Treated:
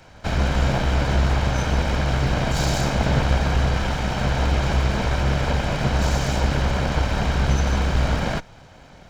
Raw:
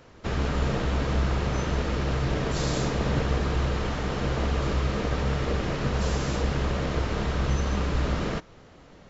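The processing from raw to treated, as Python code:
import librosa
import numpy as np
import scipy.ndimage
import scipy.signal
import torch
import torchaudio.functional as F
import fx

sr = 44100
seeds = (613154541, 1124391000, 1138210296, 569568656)

y = fx.lower_of_two(x, sr, delay_ms=1.3)
y = y * 10.0 ** (6.5 / 20.0)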